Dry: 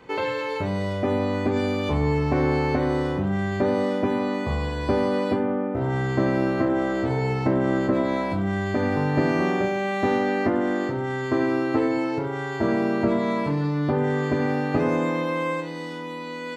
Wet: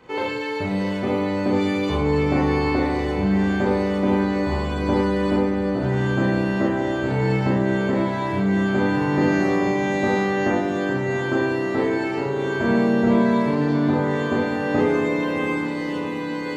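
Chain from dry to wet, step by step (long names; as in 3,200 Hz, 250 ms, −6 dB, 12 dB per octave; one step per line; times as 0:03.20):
on a send: feedback delay with all-pass diffusion 655 ms, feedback 66%, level −9 dB
on the sum: four-comb reverb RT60 0.45 s, combs from 30 ms, DRR −2 dB
level −2 dB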